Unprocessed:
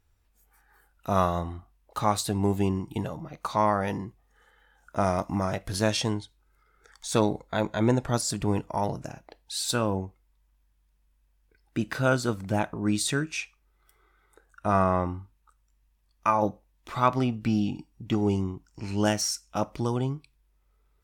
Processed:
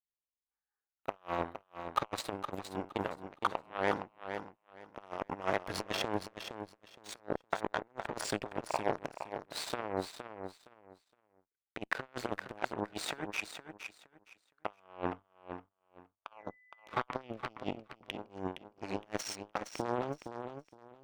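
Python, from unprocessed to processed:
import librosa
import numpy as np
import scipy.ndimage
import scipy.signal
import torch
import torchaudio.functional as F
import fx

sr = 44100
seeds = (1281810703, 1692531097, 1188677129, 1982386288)

p1 = fx.over_compress(x, sr, threshold_db=-29.0, ratio=-0.5)
p2 = fx.cheby_harmonics(p1, sr, harmonics=(7,), levels_db=(-17,), full_scale_db=-12.0)
p3 = fx.bass_treble(p2, sr, bass_db=-12, treble_db=-14)
p4 = p3 + fx.echo_feedback(p3, sr, ms=465, feedback_pct=21, wet_db=-8.5, dry=0)
y = fx.dmg_tone(p4, sr, hz=2000.0, level_db=-62.0, at=(16.38, 16.96), fade=0.02)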